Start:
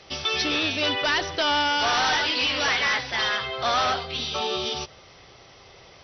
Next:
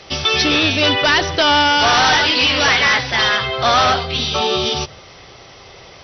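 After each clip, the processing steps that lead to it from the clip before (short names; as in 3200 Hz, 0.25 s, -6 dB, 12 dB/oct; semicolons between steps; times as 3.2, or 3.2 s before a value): dynamic EQ 110 Hz, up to +6 dB, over -50 dBFS, Q 0.75; gain +9 dB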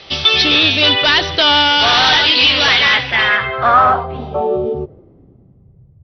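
low-pass sweep 3800 Hz -> 110 Hz, 2.81–6.03; gain -1 dB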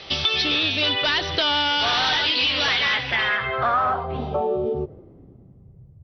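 compressor 3:1, threshold -20 dBFS, peak gain reduction 10 dB; gain -1.5 dB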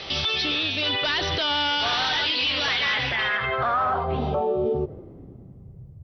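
limiter -21 dBFS, peak gain reduction 11 dB; gain +4 dB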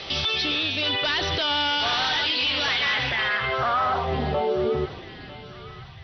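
thinning echo 0.95 s, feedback 58%, high-pass 770 Hz, level -16 dB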